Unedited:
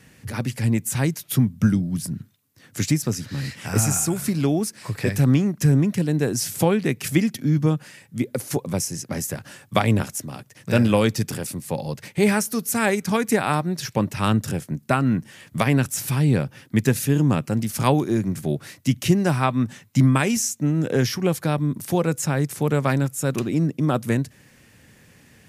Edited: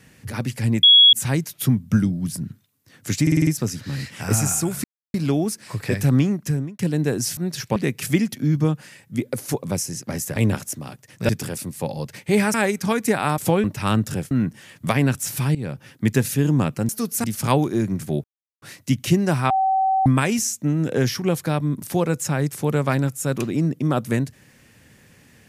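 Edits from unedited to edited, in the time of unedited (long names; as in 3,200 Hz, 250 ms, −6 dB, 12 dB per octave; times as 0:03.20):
0:00.83: insert tone 3,340 Hz −7.5 dBFS 0.30 s
0:02.92: stutter 0.05 s, 6 plays
0:04.29: splice in silence 0.30 s
0:05.45–0:05.94: fade out
0:06.52–0:06.78: swap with 0:13.62–0:14.01
0:09.38–0:09.83: remove
0:10.76–0:11.18: remove
0:12.43–0:12.78: move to 0:17.60
0:14.68–0:15.02: remove
0:16.26–0:16.61: fade in linear, from −17 dB
0:18.60: splice in silence 0.38 s
0:19.48–0:20.04: beep over 766 Hz −16 dBFS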